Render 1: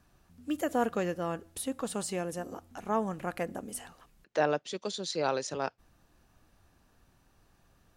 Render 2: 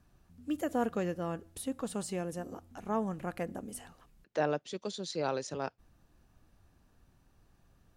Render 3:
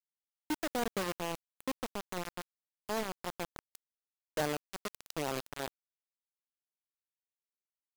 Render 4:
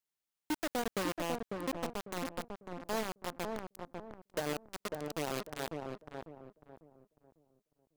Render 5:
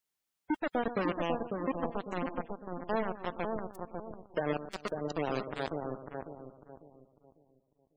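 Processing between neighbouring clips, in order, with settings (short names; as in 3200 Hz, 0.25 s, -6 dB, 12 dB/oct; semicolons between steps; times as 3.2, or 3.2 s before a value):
low shelf 350 Hz +6.5 dB; gain -5 dB
bit-crush 5-bit; gain -3.5 dB
limiter -31.5 dBFS, peak gain reduction 10.5 dB; on a send: darkening echo 0.548 s, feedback 35%, low-pass 960 Hz, level -3 dB; on the sum: gain +4 dB
echo with dull and thin repeats by turns 0.12 s, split 1500 Hz, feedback 55%, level -11 dB; spectral gate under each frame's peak -20 dB strong; gain +4 dB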